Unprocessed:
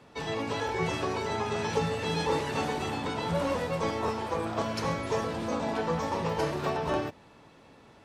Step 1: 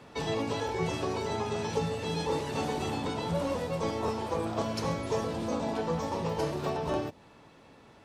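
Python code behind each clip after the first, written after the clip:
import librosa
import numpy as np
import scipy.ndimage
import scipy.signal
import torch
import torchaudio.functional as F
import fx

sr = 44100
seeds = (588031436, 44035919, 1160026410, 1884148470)

y = fx.dynamic_eq(x, sr, hz=1700.0, q=0.86, threshold_db=-47.0, ratio=4.0, max_db=-6)
y = fx.rider(y, sr, range_db=10, speed_s=0.5)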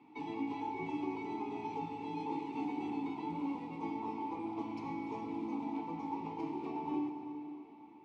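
y = fx.vowel_filter(x, sr, vowel='u')
y = fx.rev_plate(y, sr, seeds[0], rt60_s=4.0, hf_ratio=0.8, predelay_ms=80, drr_db=6.5)
y = y * librosa.db_to_amplitude(3.0)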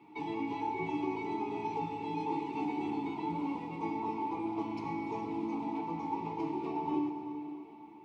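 y = fx.notch_comb(x, sr, f0_hz=260.0)
y = y * librosa.db_to_amplitude(5.0)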